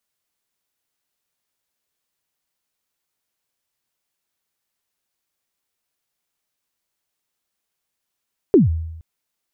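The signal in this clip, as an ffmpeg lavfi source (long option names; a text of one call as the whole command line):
ffmpeg -f lavfi -i "aevalsrc='0.501*pow(10,-3*t/0.93)*sin(2*PI*(440*0.148/log(81/440)*(exp(log(81/440)*min(t,0.148)/0.148)-1)+81*max(t-0.148,0)))':duration=0.47:sample_rate=44100" out.wav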